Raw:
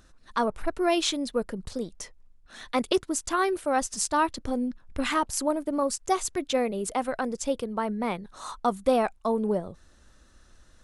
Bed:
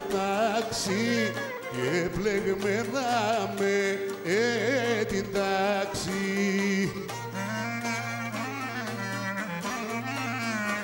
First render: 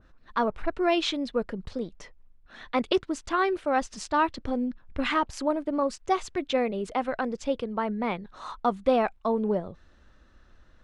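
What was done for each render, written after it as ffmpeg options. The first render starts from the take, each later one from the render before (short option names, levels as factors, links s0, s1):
-af "lowpass=2900,adynamicequalizer=threshold=0.00794:dfrequency=2100:dqfactor=0.7:tfrequency=2100:tqfactor=0.7:attack=5:release=100:ratio=0.375:range=2.5:mode=boostabove:tftype=highshelf"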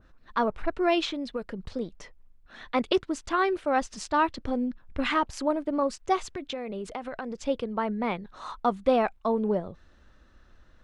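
-filter_complex "[0:a]asettb=1/sr,asplit=3[s0][s1][s2];[s0]atrim=end=1.054[s3];[s1]atrim=start=1.05:end=1.73,asetpts=PTS-STARTPTS,afade=t=in:d=0.004:c=qsin,afade=t=out:st=0.676:d=0.004:c=qsin,acrossover=split=1800|4700[s4][s5][s6];[s4]acompressor=threshold=0.0316:ratio=4[s7];[s5]acompressor=threshold=0.0126:ratio=4[s8];[s6]acompressor=threshold=0.00447:ratio=4[s9];[s7][s8][s9]amix=inputs=3:normalize=0[s10];[s2]atrim=start=1.726[s11];[s3][s10]acrossfade=d=0.004:c1=hsin:c2=qsin[s12];[s12][s11]acrossfade=d=0.004:c1=qsin:c2=hsin,asettb=1/sr,asplit=3[s13][s14][s15];[s13]atrim=end=6.234[s16];[s14]atrim=start=6.23:end=7.43,asetpts=PTS-STARTPTS,afade=t=in:d=0.004:c=qsin,afade=t=out:st=1.196:d=0.004:c=qsin,acompressor=threshold=0.0316:ratio=10:attack=3.2:release=140:knee=1:detection=peak[s17];[s15]atrim=start=7.426[s18];[s16][s17]acrossfade=d=0.004:c1=hsin:c2=qsin[s19];[s19][s18]acrossfade=d=0.004:c1=qsin:c2=hsin"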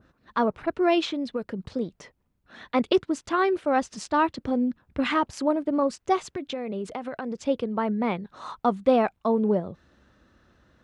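-af "highpass=100,lowshelf=f=470:g=5.5"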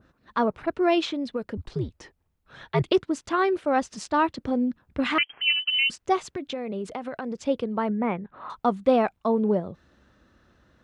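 -filter_complex "[0:a]asettb=1/sr,asplit=3[s0][s1][s2];[s0]atrim=end=1.574[s3];[s1]atrim=start=1.57:end=2.92,asetpts=PTS-STARTPTS,afade=t=in:d=0.004:c=qsin,afade=t=out:st=1.346:d=0.004:c=qsin,afreqshift=-100[s4];[s2]atrim=start=2.916[s5];[s3][s4]acrossfade=d=0.004:c1=hsin:c2=qsin[s6];[s6][s5]acrossfade=d=0.004:c1=qsin:c2=hsin,asettb=1/sr,asplit=3[s7][s8][s9];[s7]atrim=end=5.184[s10];[s8]atrim=start=5.18:end=5.9,asetpts=PTS-STARTPTS,afade=t=in:d=0.004:c=qsin,afade=t=out:st=0.716:d=0.004:c=qsin,lowpass=f=2800:t=q:w=0.5098,lowpass=f=2800:t=q:w=0.6013,lowpass=f=2800:t=q:w=0.9,lowpass=f=2800:t=q:w=2.563,afreqshift=-3300[s11];[s9]atrim=start=5.896[s12];[s10][s11]acrossfade=d=0.004:c1=hsin:c2=qsin[s13];[s13][s12]acrossfade=d=0.004:c1=qsin:c2=hsin,asettb=1/sr,asplit=3[s14][s15][s16];[s14]atrim=end=7.904[s17];[s15]atrim=start=7.9:end=8.5,asetpts=PTS-STARTPTS,afade=t=in:d=0.004:c=qsin,afade=t=out:st=0.596:d=0.004:c=qsin,lowpass=f=2500:w=0.5412,lowpass=f=2500:w=1.3066[s18];[s16]atrim=start=8.496[s19];[s17][s18]acrossfade=d=0.004:c1=hsin:c2=qsin[s20];[s20][s19]acrossfade=d=0.004:c1=qsin:c2=hsin"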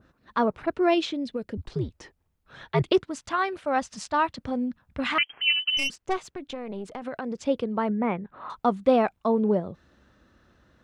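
-filter_complex "[0:a]asettb=1/sr,asplit=3[s0][s1][s2];[s0]atrim=end=0.944[s3];[s1]atrim=start=0.94:end=1.63,asetpts=PTS-STARTPTS,afade=t=in:d=0.004:c=qsin,afade=t=out:st=0.686:d=0.004:c=qsin,equalizer=f=1100:w=1:g=-7.5[s4];[s2]atrim=start=1.626[s5];[s3][s4]acrossfade=d=0.004:c1=hsin:c2=qsin[s6];[s6][s5]acrossfade=d=0.004:c1=qsin:c2=hsin,asettb=1/sr,asplit=3[s7][s8][s9];[s7]atrim=end=3.094[s10];[s8]atrim=start=3.09:end=5.21,asetpts=PTS-STARTPTS,afade=t=in:d=0.004:c=qsin,afade=t=out:st=2.116:d=0.004:c=qsin,equalizer=f=360:t=o:w=0.77:g=-10[s11];[s9]atrim=start=5.206[s12];[s10][s11]acrossfade=d=0.004:c1=hsin:c2=qsin[s13];[s13][s12]acrossfade=d=0.004:c1=qsin:c2=hsin,asettb=1/sr,asplit=3[s14][s15][s16];[s14]atrim=end=5.774[s17];[s15]atrim=start=5.77:end=7.02,asetpts=PTS-STARTPTS,afade=t=in:d=0.004:c=qsin,afade=t=out:st=1.246:d=0.004:c=qsin,aeval=exprs='(tanh(10*val(0)+0.75)-tanh(0.75))/10':c=same[s18];[s16]atrim=start=7.016[s19];[s17][s18]acrossfade=d=0.004:c1=hsin:c2=qsin[s20];[s20][s19]acrossfade=d=0.004:c1=qsin:c2=hsin"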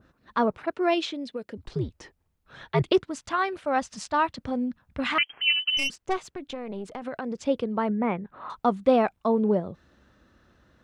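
-filter_complex "[0:a]asettb=1/sr,asplit=3[s0][s1][s2];[s0]atrim=end=0.574[s3];[s1]atrim=start=0.57:end=1.63,asetpts=PTS-STARTPTS,afade=t=in:d=0.004:c=qsin,afade=t=out:st=1.056:d=0.004:c=qsin,highpass=f=360:p=1[s4];[s2]atrim=start=1.626[s5];[s3][s4]acrossfade=d=0.004:c1=hsin:c2=qsin[s6];[s6][s5]acrossfade=d=0.004:c1=qsin:c2=hsin"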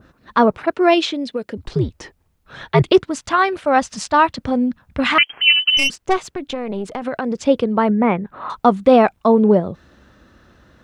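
-af "volume=3.16,alimiter=limit=0.891:level=0:latency=1"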